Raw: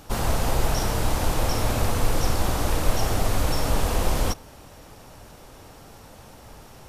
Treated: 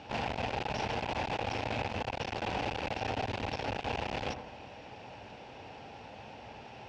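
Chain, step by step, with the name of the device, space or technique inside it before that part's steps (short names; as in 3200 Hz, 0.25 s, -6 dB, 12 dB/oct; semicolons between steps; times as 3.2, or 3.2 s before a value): analogue delay pedal into a guitar amplifier (analogue delay 77 ms, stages 1024, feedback 54%, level -16 dB; tube stage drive 28 dB, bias 0.3; speaker cabinet 110–4500 Hz, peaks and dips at 160 Hz -5 dB, 320 Hz -3 dB, 810 Hz +6 dB, 1200 Hz -9 dB, 2600 Hz +8 dB, 4000 Hz -3 dB)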